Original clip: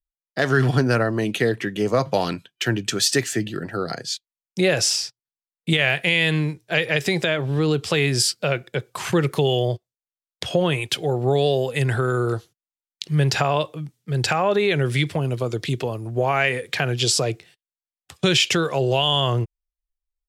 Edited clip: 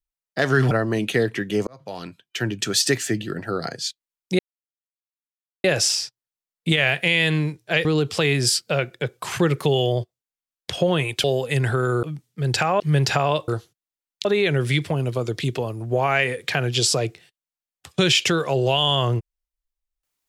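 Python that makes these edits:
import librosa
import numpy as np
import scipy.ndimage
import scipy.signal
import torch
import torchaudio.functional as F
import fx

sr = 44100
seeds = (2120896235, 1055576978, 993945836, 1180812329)

y = fx.edit(x, sr, fx.cut(start_s=0.71, length_s=0.26),
    fx.fade_in_span(start_s=1.93, length_s=1.07),
    fx.insert_silence(at_s=4.65, length_s=1.25),
    fx.cut(start_s=6.86, length_s=0.72),
    fx.cut(start_s=10.97, length_s=0.52),
    fx.swap(start_s=12.28, length_s=0.77, other_s=13.73, other_length_s=0.77), tone=tone)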